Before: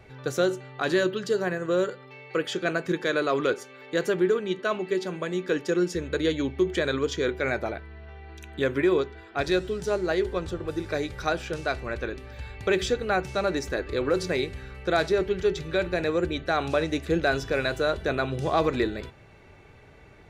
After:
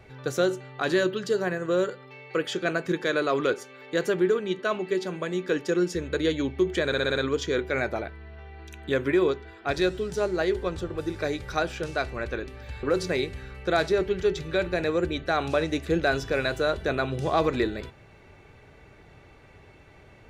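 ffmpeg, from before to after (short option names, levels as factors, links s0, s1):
-filter_complex "[0:a]asplit=7[s0][s1][s2][s3][s4][s5][s6];[s0]atrim=end=6.922[s7];[s1]atrim=start=6.858:end=6.922[s8];[s2]atrim=start=6.858:end=6.922[s9];[s3]atrim=start=6.858:end=6.922[s10];[s4]atrim=start=6.858:end=6.922[s11];[s5]atrim=start=6.858:end=12.532[s12];[s6]atrim=start=14.028[s13];[s7][s8]acrossfade=d=0.004:c1=hsin:c2=hsin[s14];[s14][s9]acrossfade=d=0.004:c1=hsin:c2=hsin[s15];[s15][s10]acrossfade=d=0.004:c1=hsin:c2=hsin[s16];[s16][s11]acrossfade=d=0.004:c1=hsin:c2=hsin[s17];[s17][s12]acrossfade=d=0.004:c1=hsin:c2=hsin[s18];[s18][s13]acrossfade=d=0.004:c1=hsin:c2=hsin"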